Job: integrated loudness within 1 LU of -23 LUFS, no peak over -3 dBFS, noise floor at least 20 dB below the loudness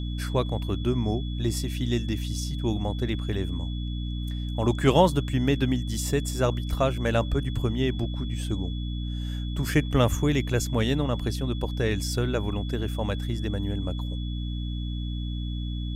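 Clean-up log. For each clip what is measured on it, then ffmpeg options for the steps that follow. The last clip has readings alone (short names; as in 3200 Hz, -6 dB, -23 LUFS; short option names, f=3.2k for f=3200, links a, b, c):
hum 60 Hz; harmonics up to 300 Hz; hum level -28 dBFS; steady tone 3400 Hz; tone level -43 dBFS; loudness -27.5 LUFS; peak -6.0 dBFS; loudness target -23.0 LUFS
-> -af "bandreject=f=60:t=h:w=6,bandreject=f=120:t=h:w=6,bandreject=f=180:t=h:w=6,bandreject=f=240:t=h:w=6,bandreject=f=300:t=h:w=6"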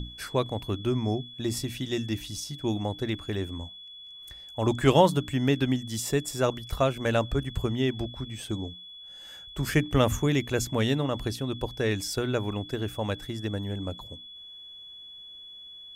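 hum none; steady tone 3400 Hz; tone level -43 dBFS
-> -af "bandreject=f=3.4k:w=30"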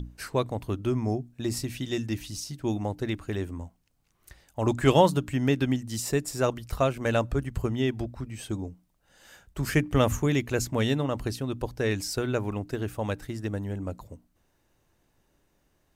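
steady tone none; loudness -28.5 LUFS; peak -7.0 dBFS; loudness target -23.0 LUFS
-> -af "volume=5.5dB,alimiter=limit=-3dB:level=0:latency=1"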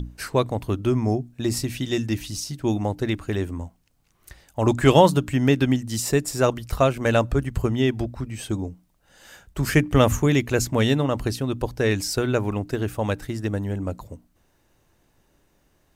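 loudness -23.0 LUFS; peak -3.0 dBFS; noise floor -65 dBFS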